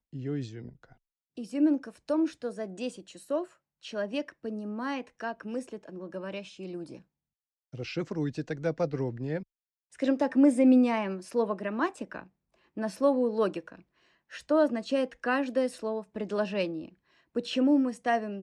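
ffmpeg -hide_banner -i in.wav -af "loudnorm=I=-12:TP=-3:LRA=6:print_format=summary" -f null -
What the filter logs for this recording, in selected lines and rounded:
Input Integrated:    -29.7 LUFS
Input True Peak:     -12.0 dBTP
Input LRA:             9.2 LU
Input Threshold:     -40.7 LUFS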